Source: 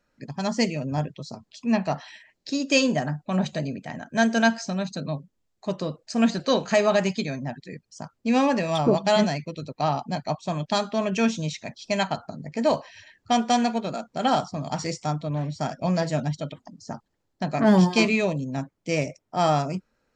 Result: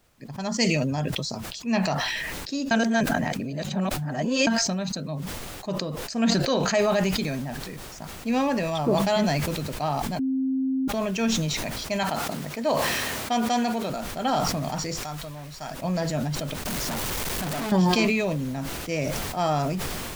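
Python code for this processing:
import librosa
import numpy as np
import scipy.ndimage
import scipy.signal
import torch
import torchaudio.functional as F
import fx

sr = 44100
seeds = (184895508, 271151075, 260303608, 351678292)

y = fx.high_shelf(x, sr, hz=2300.0, db=8.5, at=(0.58, 1.95))
y = fx.noise_floor_step(y, sr, seeds[0], at_s=6.79, before_db=-61, after_db=-46, tilt_db=3.0)
y = fx.highpass(y, sr, hz=190.0, slope=6, at=(12.03, 13.9))
y = fx.peak_eq(y, sr, hz=230.0, db=-11.5, octaves=3.0, at=(15.03, 15.71))
y = fx.clip_1bit(y, sr, at=(16.65, 17.72))
y = fx.edit(y, sr, fx.reverse_span(start_s=2.71, length_s=1.76),
    fx.bleep(start_s=10.19, length_s=0.69, hz=264.0, db=-18.5), tone=tone)
y = fx.sustainer(y, sr, db_per_s=21.0)
y = y * librosa.db_to_amplitude(-3.5)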